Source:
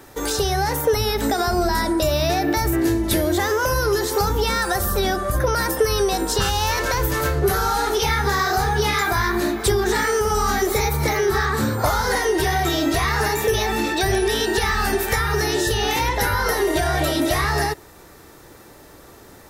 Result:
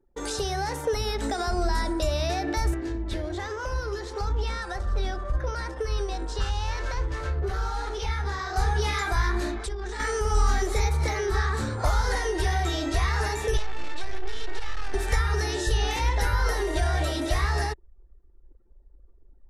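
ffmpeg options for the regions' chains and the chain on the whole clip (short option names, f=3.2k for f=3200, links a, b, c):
-filter_complex "[0:a]asettb=1/sr,asplit=3[a][b][c];[a]atrim=end=2.744[d];[b]atrim=start=2.74:end=8.56,asetpts=PTS-STARTPTS,afade=t=in:d=0.004:c=qsin,afade=t=out:st=5.816:d=0.004:c=qsin,acrossover=split=5800[e][f];[f]acompressor=threshold=-38dB:ratio=4:attack=1:release=60[g];[e][g]amix=inputs=2:normalize=0,flanger=delay=0.8:depth=7.7:regen=-81:speed=1.3:shape=sinusoidal[h];[c]atrim=start=8.556[i];[d][h]acrossfade=d=0.004:c1=hsin:c2=qsin[j];[j][i]acrossfade=d=0.004:c1=qsin:c2=hsin,asettb=1/sr,asplit=3[k][l][m];[k]atrim=end=9.584[n];[l]atrim=start=9.58:end=10,asetpts=PTS-STARTPTS,afade=t=in:d=0.004:c=qsin,afade=t=out:st=0.416:d=0.004:c=qsin,lowpass=f=11k:w=0.5412,lowpass=f=11k:w=1.3066,acompressor=threshold=-23dB:ratio=10:attack=3.2:release=140:knee=1:detection=peak,equalizer=f=120:t=o:w=0.85:g=-12.5[o];[m]atrim=start=9.996[p];[n][o]acrossfade=d=0.004:c1=hsin:c2=qsin[q];[q][p]acrossfade=d=0.004:c1=qsin:c2=hsin,asettb=1/sr,asplit=3[r][s][t];[r]atrim=end=13.574[u];[s]atrim=start=13.57:end=14.94,asetpts=PTS-STARTPTS,afade=t=in:d=0.004:c=qsin,afade=t=out:st=1.366:d=0.004:c=qsin,acrossover=split=360|5400[v][w][x];[v]acompressor=threshold=-37dB:ratio=4[y];[w]acompressor=threshold=-24dB:ratio=4[z];[x]acompressor=threshold=-45dB:ratio=4[aa];[y][z][aa]amix=inputs=3:normalize=0,aeval=exprs='max(val(0),0)':c=same[ab];[t]atrim=start=14.936[ac];[u][ab]acrossfade=d=0.004:c1=hsin:c2=qsin[ad];[ad][ac]acrossfade=d=0.004:c1=qsin:c2=hsin,lowpass=f=9.8k:w=0.5412,lowpass=f=9.8k:w=1.3066,anlmdn=6.31,asubboost=boost=9:cutoff=52,volume=-7.5dB"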